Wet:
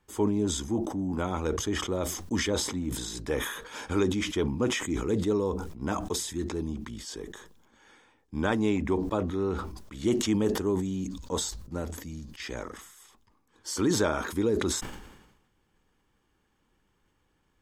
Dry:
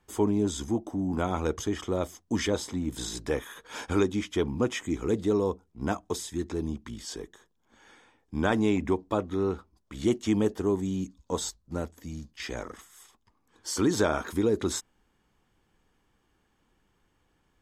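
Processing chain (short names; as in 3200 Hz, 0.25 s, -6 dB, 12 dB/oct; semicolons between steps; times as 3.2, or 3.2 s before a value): notch 700 Hz, Q 12; sustainer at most 55 dB/s; gain -1.5 dB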